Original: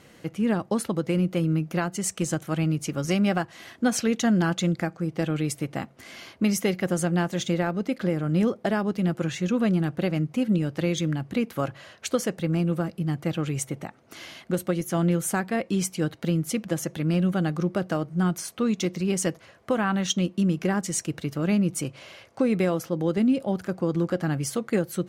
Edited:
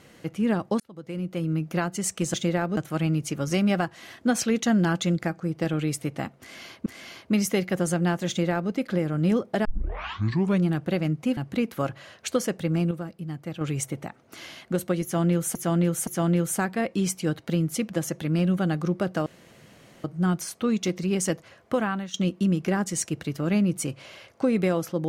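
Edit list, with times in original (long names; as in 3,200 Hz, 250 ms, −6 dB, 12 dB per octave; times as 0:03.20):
0:00.80–0:01.76: fade in
0:05.97–0:06.43: repeat, 2 plays
0:07.39–0:07.82: duplicate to 0:02.34
0:08.76: tape start 1.00 s
0:10.48–0:11.16: remove
0:12.70–0:13.40: clip gain −7 dB
0:14.82–0:15.34: repeat, 3 plays
0:18.01: splice in room tone 0.78 s
0:19.76–0:20.11: fade out, to −17.5 dB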